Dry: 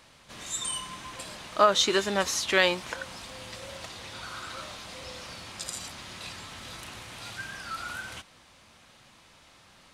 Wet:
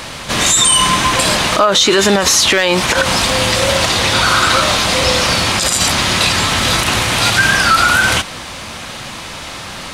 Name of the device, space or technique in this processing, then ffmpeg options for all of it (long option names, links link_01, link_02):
loud club master: -af "acompressor=threshold=-30dB:ratio=2,asoftclip=type=hard:threshold=-18dB,alimiter=level_in=29.5dB:limit=-1dB:release=50:level=0:latency=1,volume=-1dB"